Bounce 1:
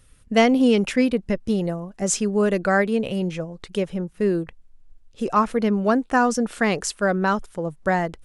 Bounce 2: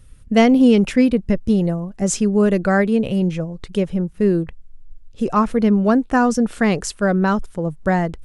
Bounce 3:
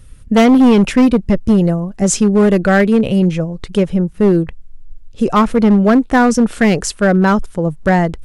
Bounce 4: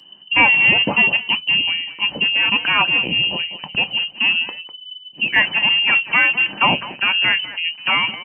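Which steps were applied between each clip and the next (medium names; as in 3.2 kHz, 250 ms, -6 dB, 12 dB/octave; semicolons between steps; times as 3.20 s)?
bass shelf 260 Hz +10.5 dB
hard clipper -11.5 dBFS, distortion -14 dB; trim +6 dB
speakerphone echo 200 ms, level -11 dB; frequency inversion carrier 3 kHz; reverberation RT60 0.15 s, pre-delay 3 ms, DRR 8 dB; trim -2.5 dB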